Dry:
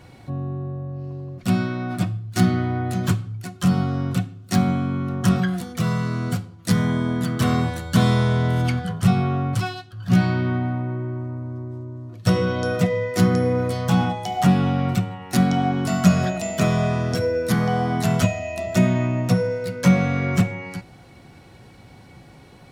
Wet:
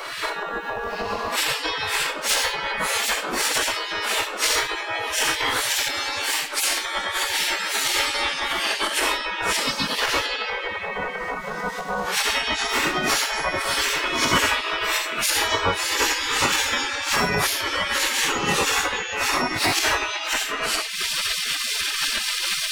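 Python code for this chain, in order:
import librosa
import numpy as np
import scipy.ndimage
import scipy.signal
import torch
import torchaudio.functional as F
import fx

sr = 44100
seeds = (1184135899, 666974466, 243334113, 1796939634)

y = fx.phase_scramble(x, sr, seeds[0], window_ms=200)
y = fx.recorder_agc(y, sr, target_db=-12.0, rise_db_per_s=61.0, max_gain_db=30)
y = fx.peak_eq(y, sr, hz=870.0, db=13.0, octaves=3.0)
y = fx.add_hum(y, sr, base_hz=50, snr_db=16)
y = fx.spec_gate(y, sr, threshold_db=-25, keep='weak')
y = fx.band_squash(y, sr, depth_pct=40)
y = y * 10.0 ** (8.0 / 20.0)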